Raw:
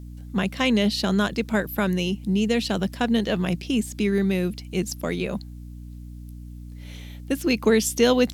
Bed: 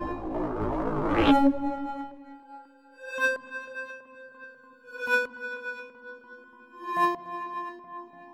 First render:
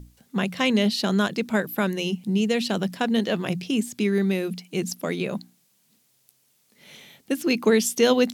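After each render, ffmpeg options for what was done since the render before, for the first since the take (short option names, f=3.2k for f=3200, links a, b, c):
-af "bandreject=f=60:t=h:w=6,bandreject=f=120:t=h:w=6,bandreject=f=180:t=h:w=6,bandreject=f=240:t=h:w=6,bandreject=f=300:t=h:w=6"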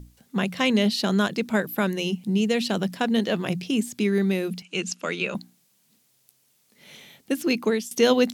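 -filter_complex "[0:a]asettb=1/sr,asplit=3[a][b][c];[a]atrim=end=4.624[d];[b]atrim=start=4.62:end=5.35,asetpts=PTS-STARTPTS,afade=t=in:d=0.004:c=qsin,afade=t=out:st=0.726:d=0.004:c=qsin,highpass=f=190:w=0.5412,highpass=f=190:w=1.3066,equalizer=f=260:t=q:w=4:g=-8,equalizer=f=380:t=q:w=4:g=-3,equalizer=f=710:t=q:w=4:g=-5,equalizer=f=1.4k:t=q:w=4:g=7,equalizer=f=2.7k:t=q:w=4:g=10,equalizer=f=6.8k:t=q:w=4:g=4,lowpass=f=8.3k:w=0.5412,lowpass=f=8.3k:w=1.3066[e];[c]atrim=start=5.346[f];[d][e]acrossfade=d=0.004:c1=hsin:c2=qsin[g];[g][f]acrossfade=d=0.004:c1=qsin:c2=hsin,asplit=2[h][i];[h]atrim=end=7.91,asetpts=PTS-STARTPTS,afade=t=out:st=7.35:d=0.56:c=qsin:silence=0.141254[j];[i]atrim=start=7.91,asetpts=PTS-STARTPTS,afade=t=in:d=0.004:c=hsin:silence=0.141254[k];[j][k]concat=n=2:v=0:a=1"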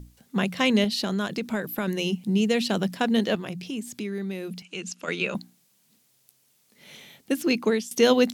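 -filter_complex "[0:a]asettb=1/sr,asplit=3[a][b][c];[a]atrim=end=0.844[d];[b]atrim=start=0.84:end=1.88,asetpts=PTS-STARTPTS,afade=t=in:d=0.004:c=qsin,afade=t=out:st=1.036:d=0.004:c=qsin,acompressor=threshold=-23dB:ratio=6:attack=3.2:release=140:knee=1:detection=peak[e];[c]atrim=start=1.876[f];[d][e]acrossfade=d=0.004:c1=hsin:c2=qsin[g];[g][f]acrossfade=d=0.004:c1=qsin:c2=hsin,asettb=1/sr,asplit=3[h][i][j];[h]atrim=end=3.354[k];[i]atrim=start=3.35:end=5.08,asetpts=PTS-STARTPTS,afade=t=in:d=0.004:c=qsin,afade=t=out:st=1.726:d=0.004:c=qsin,acompressor=threshold=-35dB:ratio=2:attack=3.2:release=140:knee=1:detection=peak[l];[j]atrim=start=5.076[m];[k][l]acrossfade=d=0.004:c1=hsin:c2=qsin[n];[n][m]acrossfade=d=0.004:c1=qsin:c2=hsin,asettb=1/sr,asplit=3[o][p][q];[o]atrim=end=7.474[r];[p]atrim=start=7.47:end=7.88,asetpts=PTS-STARTPTS,afade=t=in:d=0.004:c=qsin,afade=t=out:st=0.406:d=0.004:c=qsin,acrossover=split=9200[s][t];[t]acompressor=threshold=-55dB:ratio=4:attack=1:release=60[u];[s][u]amix=inputs=2:normalize=0[v];[q]atrim=start=7.876[w];[r][v]acrossfade=d=0.004:c1=hsin:c2=qsin[x];[x][w]acrossfade=d=0.004:c1=qsin:c2=hsin"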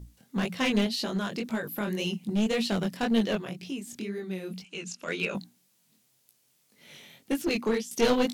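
-af "flanger=delay=17.5:depth=7.1:speed=1.9,aeval=exprs='clip(val(0),-1,0.0668)':c=same"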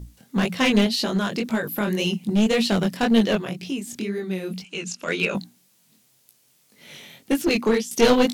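-af "volume=7dB"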